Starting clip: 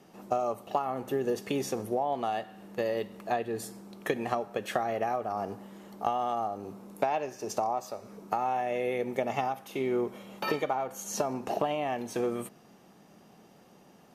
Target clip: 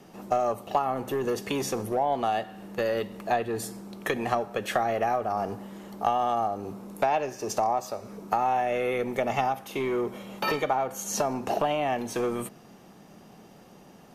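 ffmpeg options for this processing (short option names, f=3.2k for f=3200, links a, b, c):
-filter_complex "[0:a]lowshelf=f=76:g=8.5,acrossover=split=610[a][b];[a]asoftclip=type=tanh:threshold=-31.5dB[c];[c][b]amix=inputs=2:normalize=0,volume=5dB"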